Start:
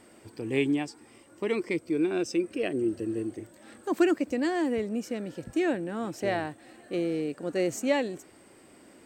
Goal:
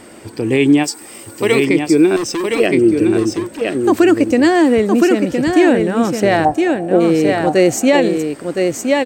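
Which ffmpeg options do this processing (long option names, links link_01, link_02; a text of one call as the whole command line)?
ffmpeg -i in.wav -filter_complex "[0:a]asplit=3[link_01][link_02][link_03];[link_01]afade=type=out:start_time=0.83:duration=0.02[link_04];[link_02]aemphasis=mode=production:type=bsi,afade=type=in:start_time=0.83:duration=0.02,afade=type=out:start_time=1.64:duration=0.02[link_05];[link_03]afade=type=in:start_time=1.64:duration=0.02[link_06];[link_04][link_05][link_06]amix=inputs=3:normalize=0,asettb=1/sr,asplit=3[link_07][link_08][link_09];[link_07]atrim=end=2.164[link_10];[link_08]atrim=start=2.16:end=2.6,asetpts=PTS-STARTPTS,afade=type=in:duration=0.004:curve=qsin,afade=type=out:start_time=0.436:duration=0.004:curve=qsin,volume=34dB,asoftclip=hard,volume=-34dB[link_11];[link_09]atrim=start=2.596[link_12];[link_10][link_11]acrossfade=duration=0.004:curve1=hsin:curve2=qsin[link_13];[link_13][link_12]acrossfade=duration=0.004:curve1=qsin:curve2=hsin,asplit=3[link_14][link_15][link_16];[link_14]afade=type=out:start_time=6.44:duration=0.02[link_17];[link_15]lowpass=frequency=750:width_type=q:width=4.9,afade=type=in:start_time=6.44:duration=0.02,afade=type=out:start_time=6.99:duration=0.02[link_18];[link_16]afade=type=in:start_time=6.99:duration=0.02[link_19];[link_17][link_18][link_19]amix=inputs=3:normalize=0,asplit=2[link_20][link_21];[link_21]aecho=0:1:1015:0.562[link_22];[link_20][link_22]amix=inputs=2:normalize=0,alimiter=level_in=17.5dB:limit=-1dB:release=50:level=0:latency=1,volume=-1.5dB" out.wav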